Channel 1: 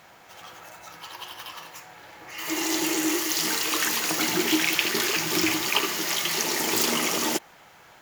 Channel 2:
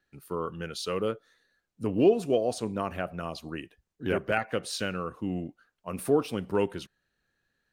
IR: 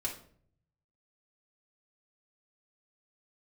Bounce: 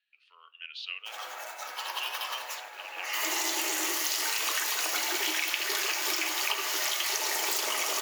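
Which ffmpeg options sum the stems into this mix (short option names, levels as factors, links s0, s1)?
-filter_complex "[0:a]agate=range=0.0282:threshold=0.00501:ratio=16:detection=peak,adelay=750,volume=1.26,asplit=2[s0][s1];[s1]volume=0.422[s2];[1:a]highpass=f=2700:t=q:w=4.9,lowpass=f=4400:w=0.5412,lowpass=f=4400:w=1.3066,volume=0.473,asplit=2[s3][s4];[s4]volume=0.188[s5];[2:a]atrim=start_sample=2205[s6];[s2][s5]amix=inputs=2:normalize=0[s7];[s7][s6]afir=irnorm=-1:irlink=0[s8];[s0][s3][s8]amix=inputs=3:normalize=0,highpass=f=480:w=0.5412,highpass=f=480:w=1.3066,acompressor=threshold=0.0447:ratio=6"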